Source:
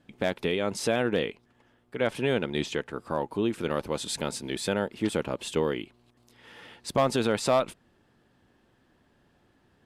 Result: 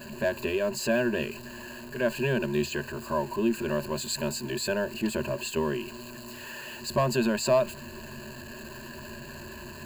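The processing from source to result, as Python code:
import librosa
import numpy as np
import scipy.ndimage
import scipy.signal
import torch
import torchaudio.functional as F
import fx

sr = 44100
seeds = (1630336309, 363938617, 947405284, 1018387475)

y = x + 0.5 * 10.0 ** (-35.5 / 20.0) * np.sign(x)
y = fx.ripple_eq(y, sr, per_octave=1.4, db=18)
y = y * 10.0 ** (-5.0 / 20.0)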